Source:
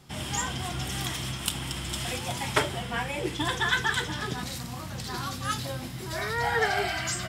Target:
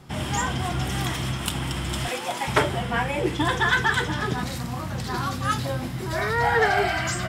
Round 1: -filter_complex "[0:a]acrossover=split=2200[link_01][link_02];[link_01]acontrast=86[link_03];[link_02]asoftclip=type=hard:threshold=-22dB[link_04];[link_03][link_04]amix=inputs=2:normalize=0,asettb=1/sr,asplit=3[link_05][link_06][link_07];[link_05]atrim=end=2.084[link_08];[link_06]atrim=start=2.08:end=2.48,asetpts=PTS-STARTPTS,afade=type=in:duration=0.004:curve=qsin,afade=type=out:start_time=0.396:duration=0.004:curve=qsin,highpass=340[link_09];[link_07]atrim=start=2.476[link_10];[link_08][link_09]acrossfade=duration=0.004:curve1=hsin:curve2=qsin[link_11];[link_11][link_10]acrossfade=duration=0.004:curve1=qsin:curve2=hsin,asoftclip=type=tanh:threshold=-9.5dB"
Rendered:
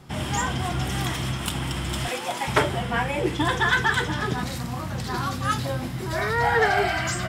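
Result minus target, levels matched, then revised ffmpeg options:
hard clipping: distortion +15 dB
-filter_complex "[0:a]acrossover=split=2200[link_01][link_02];[link_01]acontrast=86[link_03];[link_02]asoftclip=type=hard:threshold=-12.5dB[link_04];[link_03][link_04]amix=inputs=2:normalize=0,asettb=1/sr,asplit=3[link_05][link_06][link_07];[link_05]atrim=end=2.084[link_08];[link_06]atrim=start=2.08:end=2.48,asetpts=PTS-STARTPTS,afade=type=in:duration=0.004:curve=qsin,afade=type=out:start_time=0.396:duration=0.004:curve=qsin,highpass=340[link_09];[link_07]atrim=start=2.476[link_10];[link_08][link_09]acrossfade=duration=0.004:curve1=hsin:curve2=qsin[link_11];[link_11][link_10]acrossfade=duration=0.004:curve1=qsin:curve2=hsin,asoftclip=type=tanh:threshold=-9.5dB"

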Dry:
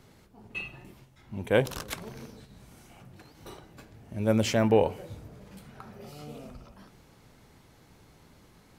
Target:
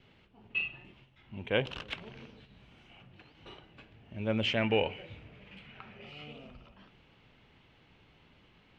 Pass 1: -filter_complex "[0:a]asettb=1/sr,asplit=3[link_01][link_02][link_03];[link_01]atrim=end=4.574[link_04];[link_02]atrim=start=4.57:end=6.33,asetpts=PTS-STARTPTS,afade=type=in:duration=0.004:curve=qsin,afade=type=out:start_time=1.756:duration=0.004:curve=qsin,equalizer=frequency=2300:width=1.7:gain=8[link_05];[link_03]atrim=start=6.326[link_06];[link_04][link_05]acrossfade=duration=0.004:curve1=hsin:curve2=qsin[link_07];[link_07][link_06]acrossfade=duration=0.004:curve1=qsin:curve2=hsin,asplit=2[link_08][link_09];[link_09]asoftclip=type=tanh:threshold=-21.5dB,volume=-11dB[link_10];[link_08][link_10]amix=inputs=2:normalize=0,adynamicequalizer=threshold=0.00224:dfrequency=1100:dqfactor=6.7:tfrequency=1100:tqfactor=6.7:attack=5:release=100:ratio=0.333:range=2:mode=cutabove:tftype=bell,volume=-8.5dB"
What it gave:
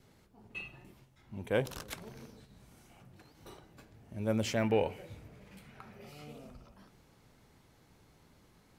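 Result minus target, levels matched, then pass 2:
4,000 Hz band −7.0 dB
-filter_complex "[0:a]asettb=1/sr,asplit=3[link_01][link_02][link_03];[link_01]atrim=end=4.574[link_04];[link_02]atrim=start=4.57:end=6.33,asetpts=PTS-STARTPTS,afade=type=in:duration=0.004:curve=qsin,afade=type=out:start_time=1.756:duration=0.004:curve=qsin,equalizer=frequency=2300:width=1.7:gain=8[link_05];[link_03]atrim=start=6.326[link_06];[link_04][link_05]acrossfade=duration=0.004:curve1=hsin:curve2=qsin[link_07];[link_07][link_06]acrossfade=duration=0.004:curve1=qsin:curve2=hsin,asplit=2[link_08][link_09];[link_09]asoftclip=type=tanh:threshold=-21.5dB,volume=-11dB[link_10];[link_08][link_10]amix=inputs=2:normalize=0,adynamicequalizer=threshold=0.00224:dfrequency=1100:dqfactor=6.7:tfrequency=1100:tqfactor=6.7:attack=5:release=100:ratio=0.333:range=2:mode=cutabove:tftype=bell,lowpass=frequency=2900:width_type=q:width=4,volume=-8.5dB"

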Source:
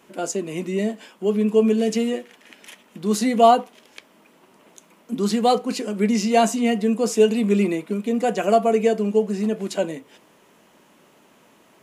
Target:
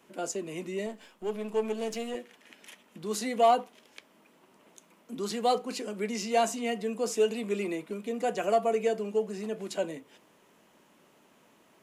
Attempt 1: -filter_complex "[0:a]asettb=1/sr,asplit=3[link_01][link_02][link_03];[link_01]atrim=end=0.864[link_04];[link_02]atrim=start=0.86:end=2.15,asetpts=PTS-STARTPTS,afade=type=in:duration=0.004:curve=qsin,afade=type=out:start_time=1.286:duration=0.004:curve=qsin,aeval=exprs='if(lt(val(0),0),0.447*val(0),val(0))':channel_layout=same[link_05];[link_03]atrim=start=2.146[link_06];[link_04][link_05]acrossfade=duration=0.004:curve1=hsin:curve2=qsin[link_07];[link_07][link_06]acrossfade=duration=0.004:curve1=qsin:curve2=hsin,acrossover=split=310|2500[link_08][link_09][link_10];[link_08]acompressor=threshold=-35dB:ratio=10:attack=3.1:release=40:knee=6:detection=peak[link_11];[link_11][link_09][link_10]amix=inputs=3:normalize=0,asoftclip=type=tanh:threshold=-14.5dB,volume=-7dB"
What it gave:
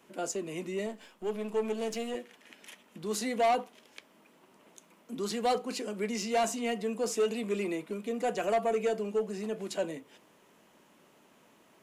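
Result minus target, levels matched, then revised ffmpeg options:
soft clipping: distortion +13 dB
-filter_complex "[0:a]asettb=1/sr,asplit=3[link_01][link_02][link_03];[link_01]atrim=end=0.864[link_04];[link_02]atrim=start=0.86:end=2.15,asetpts=PTS-STARTPTS,afade=type=in:duration=0.004:curve=qsin,afade=type=out:start_time=1.286:duration=0.004:curve=qsin,aeval=exprs='if(lt(val(0),0),0.447*val(0),val(0))':channel_layout=same[link_05];[link_03]atrim=start=2.146[link_06];[link_04][link_05]acrossfade=duration=0.004:curve1=hsin:curve2=qsin[link_07];[link_07][link_06]acrossfade=duration=0.004:curve1=qsin:curve2=hsin,acrossover=split=310|2500[link_08][link_09][link_10];[link_08]acompressor=threshold=-35dB:ratio=10:attack=3.1:release=40:knee=6:detection=peak[link_11];[link_11][link_09][link_10]amix=inputs=3:normalize=0,asoftclip=type=tanh:threshold=-4.5dB,volume=-7dB"

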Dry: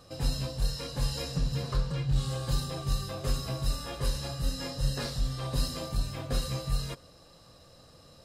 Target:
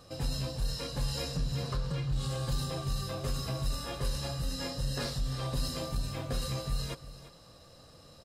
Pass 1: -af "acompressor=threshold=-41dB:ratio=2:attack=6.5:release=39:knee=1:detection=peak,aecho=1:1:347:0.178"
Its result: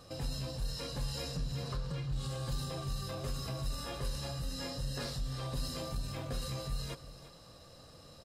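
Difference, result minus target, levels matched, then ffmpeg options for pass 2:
downward compressor: peak gain reduction +4.5 dB
-af "acompressor=threshold=-32dB:ratio=2:attack=6.5:release=39:knee=1:detection=peak,aecho=1:1:347:0.178"

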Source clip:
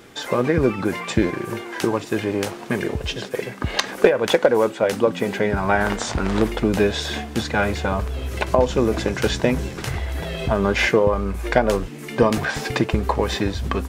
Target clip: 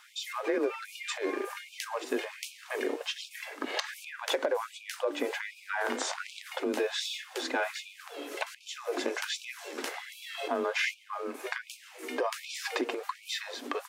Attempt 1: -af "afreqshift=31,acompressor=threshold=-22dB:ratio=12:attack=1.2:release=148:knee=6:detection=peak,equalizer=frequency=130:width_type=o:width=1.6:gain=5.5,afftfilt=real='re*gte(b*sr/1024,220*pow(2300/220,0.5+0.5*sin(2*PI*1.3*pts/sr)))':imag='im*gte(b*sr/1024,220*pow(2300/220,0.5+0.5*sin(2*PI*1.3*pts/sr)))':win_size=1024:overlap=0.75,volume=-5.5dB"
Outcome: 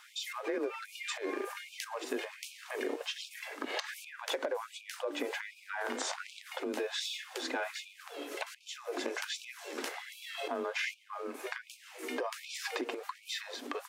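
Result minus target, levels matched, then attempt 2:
downward compressor: peak gain reduction +6 dB
-af "afreqshift=31,acompressor=threshold=-15.5dB:ratio=12:attack=1.2:release=148:knee=6:detection=peak,equalizer=frequency=130:width_type=o:width=1.6:gain=5.5,afftfilt=real='re*gte(b*sr/1024,220*pow(2300/220,0.5+0.5*sin(2*PI*1.3*pts/sr)))':imag='im*gte(b*sr/1024,220*pow(2300/220,0.5+0.5*sin(2*PI*1.3*pts/sr)))':win_size=1024:overlap=0.75,volume=-5.5dB"

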